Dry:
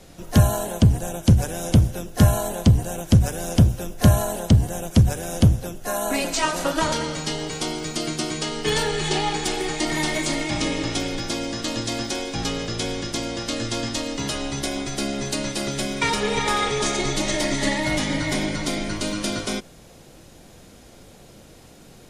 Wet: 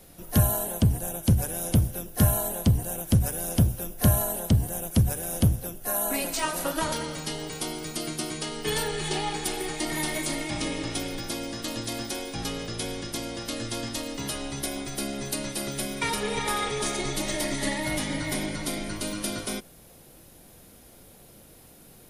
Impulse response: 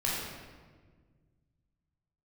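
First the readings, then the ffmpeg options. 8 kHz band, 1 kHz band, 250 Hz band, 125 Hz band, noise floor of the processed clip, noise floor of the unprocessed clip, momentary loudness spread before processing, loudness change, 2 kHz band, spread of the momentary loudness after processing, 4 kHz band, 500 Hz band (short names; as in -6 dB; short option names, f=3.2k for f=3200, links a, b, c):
-2.0 dB, -6.0 dB, -6.0 dB, -6.0 dB, -52 dBFS, -47 dBFS, 8 LU, -5.0 dB, -6.0 dB, 8 LU, -6.0 dB, -6.0 dB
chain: -af "aexciter=amount=6.5:drive=2:freq=9.5k,volume=-6dB"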